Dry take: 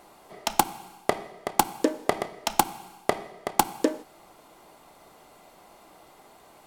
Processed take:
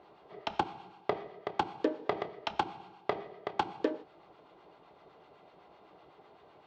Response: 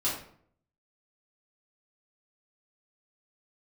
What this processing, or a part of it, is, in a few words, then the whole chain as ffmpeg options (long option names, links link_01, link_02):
guitar amplifier with harmonic tremolo: -filter_complex "[0:a]lowshelf=frequency=180:gain=5.5,acrossover=split=830[link_01][link_02];[link_01]aeval=exprs='val(0)*(1-0.5/2+0.5/2*cos(2*PI*7.9*n/s))':channel_layout=same[link_03];[link_02]aeval=exprs='val(0)*(1-0.5/2-0.5/2*cos(2*PI*7.9*n/s))':channel_layout=same[link_04];[link_03][link_04]amix=inputs=2:normalize=0,asoftclip=type=tanh:threshold=-13dB,highpass=87,equalizer=frequency=230:width_type=q:width=4:gain=-6,equalizer=frequency=420:width_type=q:width=4:gain=6,equalizer=frequency=2100:width_type=q:width=4:gain=-3,lowpass=frequency=3800:width=0.5412,lowpass=frequency=3800:width=1.3066,volume=-3.5dB"